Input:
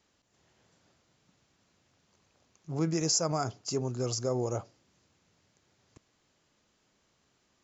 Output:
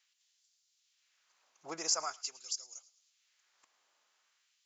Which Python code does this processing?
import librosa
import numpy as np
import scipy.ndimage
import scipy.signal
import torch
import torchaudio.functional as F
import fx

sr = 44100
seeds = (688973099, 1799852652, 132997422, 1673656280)

y = fx.stretch_vocoder(x, sr, factor=0.61)
y = fx.echo_thinned(y, sr, ms=109, feedback_pct=46, hz=600.0, wet_db=-20.5)
y = fx.filter_lfo_highpass(y, sr, shape='sine', hz=0.45, low_hz=790.0, high_hz=4900.0, q=1.1)